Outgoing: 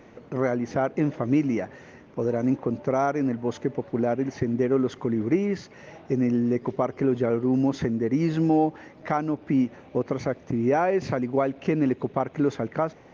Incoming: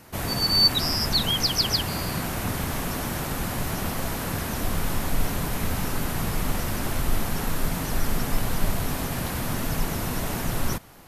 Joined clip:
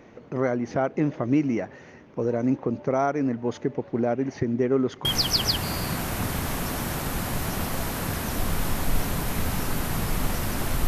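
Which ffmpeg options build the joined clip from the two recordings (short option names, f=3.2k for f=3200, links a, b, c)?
-filter_complex "[0:a]apad=whole_dur=10.87,atrim=end=10.87,atrim=end=5.052[a];[1:a]atrim=start=1.298:end=7.12[b];[a][b]acrossfade=d=0.004:c1=hsin:c2=hsin"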